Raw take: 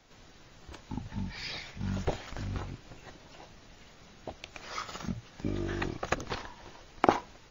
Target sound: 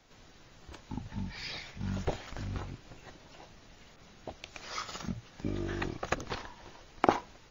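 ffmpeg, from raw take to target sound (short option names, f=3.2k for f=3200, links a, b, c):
-filter_complex "[0:a]asettb=1/sr,asplit=3[a][b][c];[a]atrim=end=3.964[d];[b]atrim=start=3.96:end=5.02,asetpts=PTS-STARTPTS,afade=t=in:d=0.004:c=qsin,afade=t=out:st=1.056:d=0.004:c=qsin,adynamicequalizer=threshold=0.00251:dfrequency=5400:dqfactor=0.75:tfrequency=5400:tqfactor=0.75:attack=5:release=100:ratio=0.375:range=2:mode=boostabove:tftype=bell[e];[c]atrim=start=5.016[f];[d][e]acrossfade=d=0.004:c1=hsin:c2=qsin[g];[g][f]acrossfade=d=0.004:c1=qsin:c2=hsin,volume=-1.5dB"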